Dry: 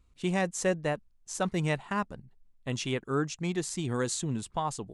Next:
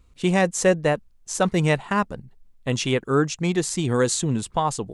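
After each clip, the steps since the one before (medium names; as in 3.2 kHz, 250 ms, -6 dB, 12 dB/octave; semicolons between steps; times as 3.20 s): peaking EQ 490 Hz +3.5 dB 0.3 oct; trim +8.5 dB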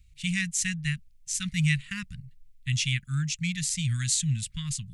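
elliptic band-stop 150–2100 Hz, stop band 60 dB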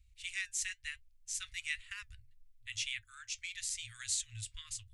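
flange 1 Hz, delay 4 ms, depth 2.6 ms, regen -74%; FFT band-reject 110–970 Hz; trim -4 dB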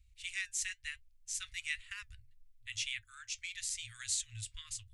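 no audible change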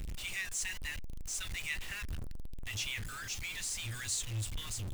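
jump at every zero crossing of -37.5 dBFS; bass shelf 320 Hz +7.5 dB; trim -2.5 dB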